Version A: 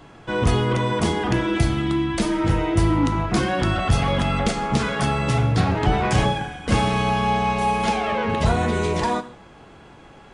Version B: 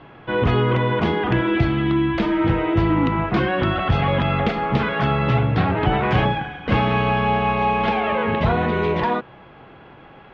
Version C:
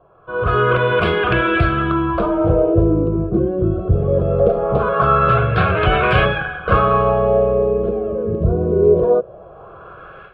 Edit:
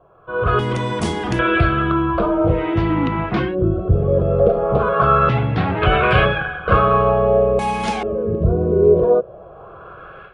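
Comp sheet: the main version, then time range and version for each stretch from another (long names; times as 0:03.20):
C
0:00.59–0:01.39: punch in from A
0:02.55–0:03.48: punch in from B, crossfade 0.16 s
0:05.29–0:05.82: punch in from B
0:07.59–0:08.03: punch in from A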